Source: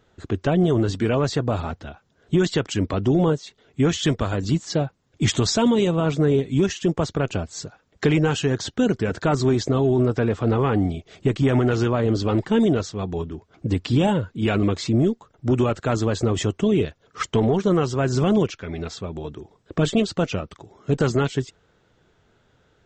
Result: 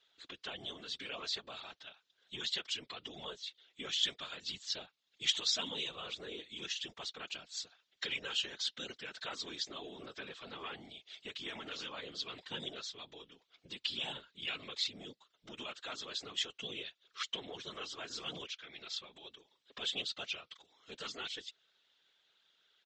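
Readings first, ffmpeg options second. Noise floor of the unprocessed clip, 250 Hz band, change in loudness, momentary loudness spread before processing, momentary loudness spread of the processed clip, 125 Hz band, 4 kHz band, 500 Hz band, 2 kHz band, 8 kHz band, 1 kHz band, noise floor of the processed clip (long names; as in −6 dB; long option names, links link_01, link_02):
−63 dBFS, −33.0 dB, −17.5 dB, 11 LU, 15 LU, −38.5 dB, −3.5 dB, −28.0 dB, −12.0 dB, −12.5 dB, −20.5 dB, −80 dBFS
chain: -filter_complex "[0:a]aecho=1:1:4.5:0.46,asplit=2[link_01][link_02];[link_02]acompressor=threshold=-28dB:ratio=6,volume=-1dB[link_03];[link_01][link_03]amix=inputs=2:normalize=0,bandpass=frequency=3600:width_type=q:width=2.6:csg=0,afftfilt=real='hypot(re,im)*cos(2*PI*random(0))':imag='hypot(re,im)*sin(2*PI*random(1))':win_size=512:overlap=0.75,volume=1.5dB"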